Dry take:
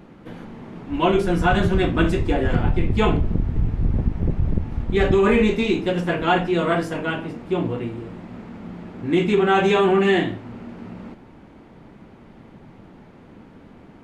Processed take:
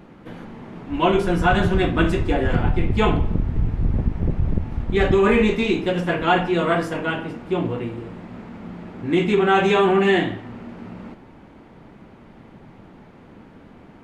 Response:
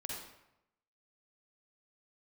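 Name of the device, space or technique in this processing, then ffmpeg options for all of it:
filtered reverb send: -filter_complex "[0:a]asplit=2[a][b];[b]highpass=470,lowpass=3.9k[c];[1:a]atrim=start_sample=2205[d];[c][d]afir=irnorm=-1:irlink=0,volume=-10.5dB[e];[a][e]amix=inputs=2:normalize=0"

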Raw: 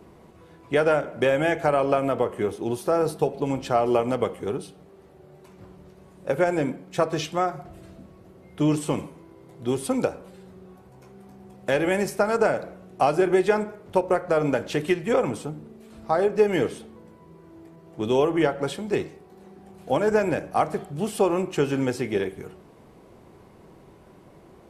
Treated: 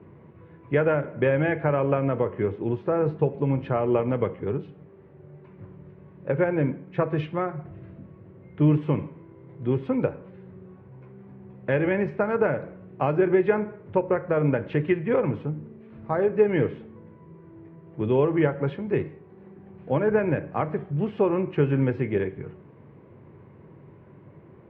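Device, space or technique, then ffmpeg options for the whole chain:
bass cabinet: -af "highpass=75,equalizer=f=100:t=q:w=4:g=8,equalizer=f=140:t=q:w=4:g=8,equalizer=f=730:t=q:w=4:g=-9,equalizer=f=1.3k:t=q:w=4:g=-4,lowpass=f=2.3k:w=0.5412,lowpass=f=2.3k:w=1.3066"

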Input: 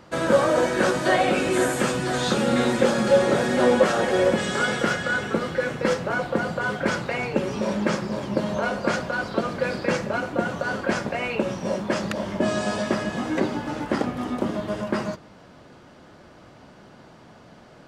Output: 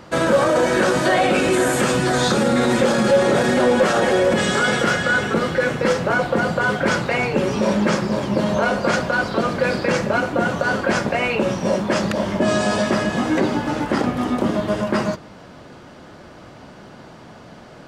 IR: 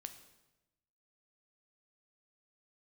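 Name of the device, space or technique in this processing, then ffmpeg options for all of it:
clipper into limiter: -filter_complex "[0:a]asoftclip=type=hard:threshold=-11dB,alimiter=limit=-16dB:level=0:latency=1:release=26,asettb=1/sr,asplit=3[a][b][c];[a]atrim=end=2.094[d];[b]atrim=start=2.09:end=2.69,asetpts=PTS-STARTPTS,afade=t=in:d=0.004:c=qsin,afade=t=out:st=0.596:d=0.004:c=qsin,equalizer=f=2.9k:t=o:w=0.41:g=-5.5[e];[c]atrim=start=2.686[f];[d][e]acrossfade=d=0.004:c1=hsin:c2=qsin[g];[g][f]acrossfade=d=0.004:c1=qsin:c2=hsin,volume=7dB"

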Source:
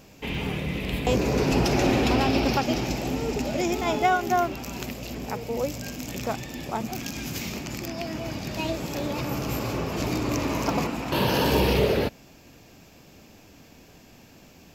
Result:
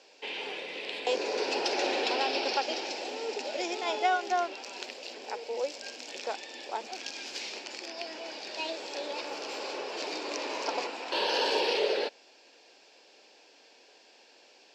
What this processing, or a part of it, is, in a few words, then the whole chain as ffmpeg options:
phone speaker on a table: -af "highpass=f=450:w=0.5412,highpass=f=450:w=1.3066,equalizer=f=660:t=q:w=4:g=-5,equalizer=f=1.2k:t=q:w=4:g=-10,equalizer=f=2.1k:t=q:w=4:g=-4,equalizer=f=4.4k:t=q:w=4:g=4,equalizer=f=6.5k:t=q:w=4:g=-5,lowpass=f=6.8k:w=0.5412,lowpass=f=6.8k:w=1.3066,volume=-1dB"

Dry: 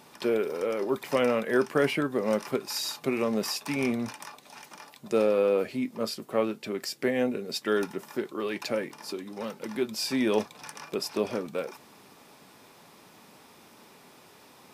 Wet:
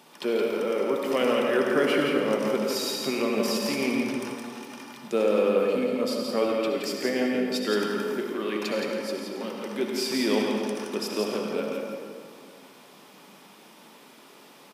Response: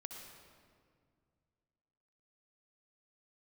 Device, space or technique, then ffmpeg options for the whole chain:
PA in a hall: -filter_complex "[0:a]asettb=1/sr,asplit=3[a][b][c];[a]atrim=end=6.414[d];[b]atrim=start=6.41:end=6.83,asetpts=PTS-STARTPTS,afade=t=in:d=0.004:c=qsin,afade=t=out:st=0.416:d=0.004:c=qsin,aecho=1:1:6.8:0.78,atrim=end_sample=18522[e];[c]atrim=start=6.826[f];[d][e]acrossfade=d=0.004:c1=hsin:c2=qsin[g];[g][f]acrossfade=d=0.004:c1=qsin:c2=hsin,highpass=f=160:w=0.5412,highpass=f=160:w=1.3066,equalizer=f=3.1k:t=o:w=0.29:g=5,aecho=1:1:170:0.531[h];[1:a]atrim=start_sample=2205[i];[h][i]afir=irnorm=-1:irlink=0,volume=5dB"

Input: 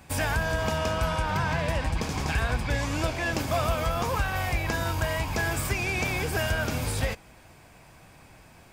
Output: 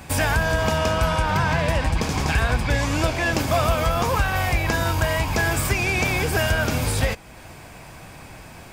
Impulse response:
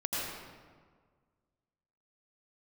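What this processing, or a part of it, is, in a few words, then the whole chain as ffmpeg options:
parallel compression: -filter_complex "[0:a]asplit=2[a][b];[b]acompressor=threshold=-43dB:ratio=6,volume=-0.5dB[c];[a][c]amix=inputs=2:normalize=0,volume=5dB"

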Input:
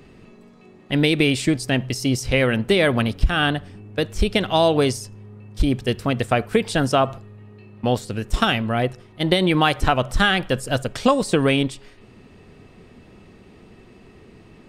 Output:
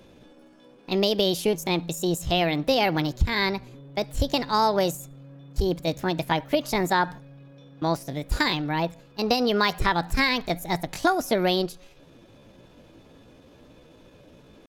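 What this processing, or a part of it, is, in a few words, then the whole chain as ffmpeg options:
chipmunk voice: -af "asetrate=58866,aresample=44100,atempo=0.749154,volume=-4.5dB"

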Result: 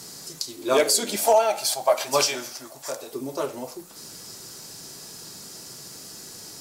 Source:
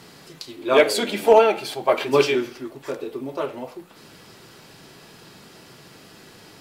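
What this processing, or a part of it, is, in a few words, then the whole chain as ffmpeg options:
over-bright horn tweeter: -filter_complex "[0:a]asettb=1/sr,asplit=3[a][b][c];[a]atrim=end=1.164[d];[b]atrim=start=1.16:end=3.13,asetpts=PTS-STARTPTS,afade=t=in:d=0.004:c=qsin,afade=t=out:st=1.966:d=0.004:c=qsin,lowshelf=f=500:t=q:w=3:g=-7[e];[c]atrim=start=3.126[f];[d][e]acrossfade=d=0.004:c1=hsin:c2=qsin[g];[g][f]acrossfade=d=0.004:c1=qsin:c2=hsin,highshelf=f=4.2k:t=q:w=1.5:g=13,alimiter=limit=-7.5dB:level=0:latency=1:release=269,volume=-1dB"

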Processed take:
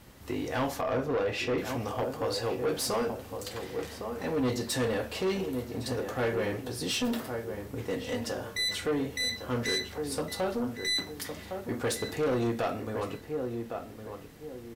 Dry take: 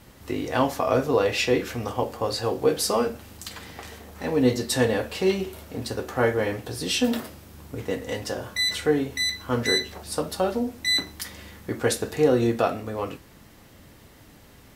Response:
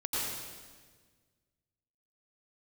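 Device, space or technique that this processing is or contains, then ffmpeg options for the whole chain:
saturation between pre-emphasis and de-emphasis: -filter_complex "[0:a]asettb=1/sr,asplit=3[a][b][c];[a]atrim=end=0.814[d];[b]atrim=start=0.81:end=1.58,asetpts=PTS-STARTPTS,afade=t=in:d=0.004:c=qsin,afade=t=out:st=0.766:d=0.004:c=qsin,highshelf=f=3.7k:g=-10.5[e];[c]atrim=start=1.576[f];[d][e]acrossfade=d=0.004:c1=hsin:c2=qsin[g];[g][f]acrossfade=d=0.004:c1=qsin:c2=hsin,highshelf=f=10k:g=7,asplit=2[h][i];[i]adelay=1110,lowpass=f=1.6k:p=1,volume=-9.5dB,asplit=2[j][k];[k]adelay=1110,lowpass=f=1.6k:p=1,volume=0.31,asplit=2[l][m];[m]adelay=1110,lowpass=f=1.6k:p=1,volume=0.31[n];[h][j][l][n]amix=inputs=4:normalize=0,asoftclip=type=tanh:threshold=-21dB,highshelf=f=10k:g=-7,volume=-3dB"

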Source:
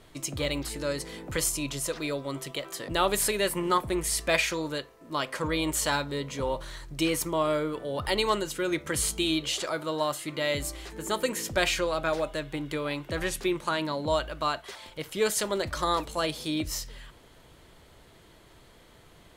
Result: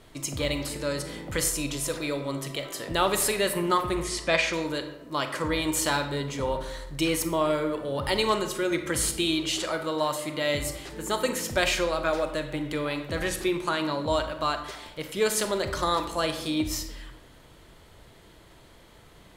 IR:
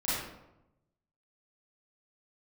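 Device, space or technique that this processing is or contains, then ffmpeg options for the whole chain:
saturated reverb return: -filter_complex "[0:a]asplit=2[a][b];[1:a]atrim=start_sample=2205[c];[b][c]afir=irnorm=-1:irlink=0,asoftclip=type=tanh:threshold=-11.5dB,volume=-13.5dB[d];[a][d]amix=inputs=2:normalize=0,asplit=3[e][f][g];[e]afade=t=out:st=4.03:d=0.02[h];[f]lowpass=6.1k,afade=t=in:st=4.03:d=0.02,afade=t=out:st=4.52:d=0.02[i];[g]afade=t=in:st=4.52:d=0.02[j];[h][i][j]amix=inputs=3:normalize=0"

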